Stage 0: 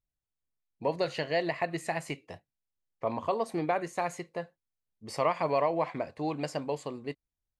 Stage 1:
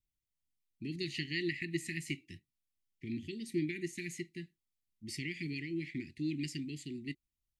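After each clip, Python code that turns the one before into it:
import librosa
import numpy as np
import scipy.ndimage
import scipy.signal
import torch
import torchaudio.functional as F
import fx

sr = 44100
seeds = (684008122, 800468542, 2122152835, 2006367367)

y = scipy.signal.sosfilt(scipy.signal.cheby1(5, 1.0, [360.0, 1900.0], 'bandstop', fs=sr, output='sos'), x)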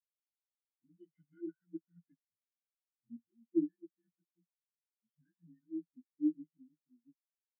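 y = fx.partial_stretch(x, sr, pct=87)
y = fx.spectral_expand(y, sr, expansion=4.0)
y = y * librosa.db_to_amplitude(3.0)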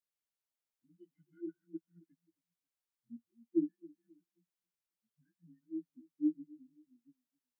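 y = fx.echo_feedback(x, sr, ms=267, feedback_pct=35, wet_db=-23.5)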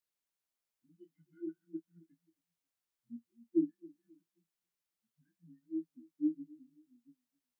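y = fx.doubler(x, sr, ms=25.0, db=-10.5)
y = y * librosa.db_to_amplitude(1.0)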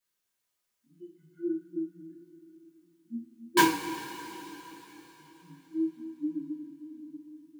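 y = (np.mod(10.0 ** (22.0 / 20.0) * x + 1.0, 2.0) - 1.0) / 10.0 ** (22.0 / 20.0)
y = fx.rev_double_slope(y, sr, seeds[0], early_s=0.38, late_s=4.3, knee_db=-18, drr_db=-8.0)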